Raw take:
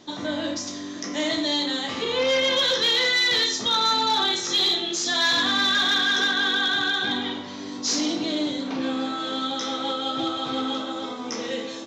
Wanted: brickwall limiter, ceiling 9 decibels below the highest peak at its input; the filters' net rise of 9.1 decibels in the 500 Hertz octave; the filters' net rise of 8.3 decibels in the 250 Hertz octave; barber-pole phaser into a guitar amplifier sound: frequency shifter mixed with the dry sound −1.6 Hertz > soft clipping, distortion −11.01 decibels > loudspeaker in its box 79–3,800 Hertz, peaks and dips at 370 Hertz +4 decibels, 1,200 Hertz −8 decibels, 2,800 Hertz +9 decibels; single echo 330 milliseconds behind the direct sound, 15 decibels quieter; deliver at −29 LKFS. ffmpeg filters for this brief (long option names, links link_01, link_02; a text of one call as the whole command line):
ffmpeg -i in.wav -filter_complex "[0:a]equalizer=frequency=250:width_type=o:gain=6,equalizer=frequency=500:width_type=o:gain=8,alimiter=limit=-17dB:level=0:latency=1,aecho=1:1:330:0.178,asplit=2[link_01][link_02];[link_02]afreqshift=-1.6[link_03];[link_01][link_03]amix=inputs=2:normalize=1,asoftclip=threshold=-28dB,highpass=79,equalizer=frequency=370:width_type=q:width=4:gain=4,equalizer=frequency=1200:width_type=q:width=4:gain=-8,equalizer=frequency=2800:width_type=q:width=4:gain=9,lowpass=frequency=3800:width=0.5412,lowpass=frequency=3800:width=1.3066,volume=2dB" out.wav